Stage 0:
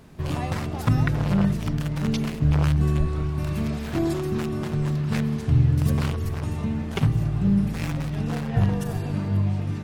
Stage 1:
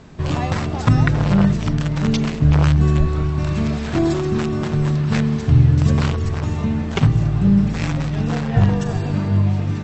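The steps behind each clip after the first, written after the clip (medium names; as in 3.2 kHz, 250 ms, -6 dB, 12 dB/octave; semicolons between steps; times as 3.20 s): Chebyshev low-pass 7.9 kHz, order 10; trim +7 dB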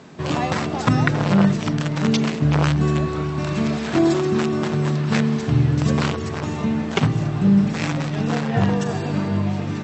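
high-pass 180 Hz 12 dB/octave; trim +2 dB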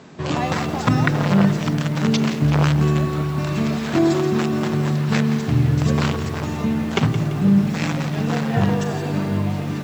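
bit-crushed delay 170 ms, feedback 55%, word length 6-bit, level -12 dB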